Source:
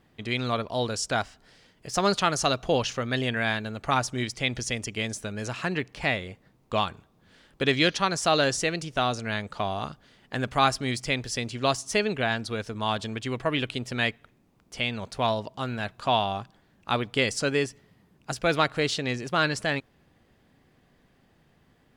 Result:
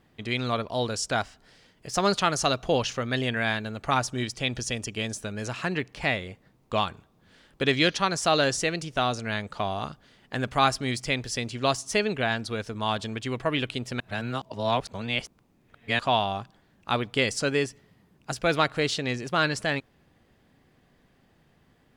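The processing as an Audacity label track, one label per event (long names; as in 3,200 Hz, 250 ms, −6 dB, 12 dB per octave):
4.090000	5.230000	notch filter 2,100 Hz, Q 9.2
14.000000	15.990000	reverse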